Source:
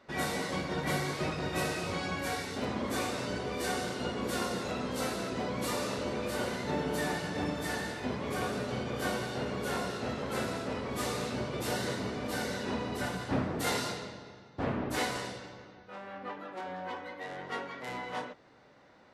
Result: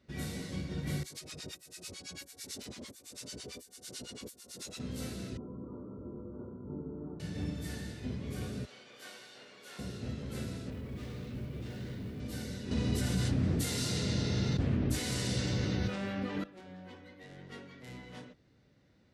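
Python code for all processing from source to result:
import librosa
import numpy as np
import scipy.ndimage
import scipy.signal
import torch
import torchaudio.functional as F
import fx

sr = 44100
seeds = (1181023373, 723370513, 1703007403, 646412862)

y = fx.chain(x, sr, fx.bass_treble(bass_db=-14, treble_db=15),
    fx.over_compress(threshold_db=-35.0, ratio=-0.5),
    fx.harmonic_tremolo(hz=9.0, depth_pct=100, crossover_hz=890.0), at=(1.03, 4.8))
y = fx.chain(y, sr, fx.cheby_ripple(hz=1400.0, ripple_db=9),
    fx.doubler(ms=20.0, db=-10.5), at=(5.37, 7.2))
y = fx.chain(y, sr, fx.highpass(hz=840.0, slope=12),
    fx.high_shelf(hz=8500.0, db=-9.5), at=(8.65, 9.79))
y = fx.chain(y, sr, fx.lowpass(hz=2900.0, slope=12),
    fx.mod_noise(seeds[0], snr_db=29),
    fx.overload_stage(gain_db=34.0), at=(10.7, 12.2))
y = fx.chain(y, sr, fx.lowpass(hz=11000.0, slope=12),
    fx.high_shelf(hz=4800.0, db=7.0),
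    fx.env_flatten(amount_pct=100), at=(12.71, 16.44))
y = scipy.signal.sosfilt(scipy.signal.butter(2, 51.0, 'highpass', fs=sr, output='sos'), y)
y = fx.tone_stack(y, sr, knobs='10-0-1')
y = F.gain(torch.from_numpy(y), 14.5).numpy()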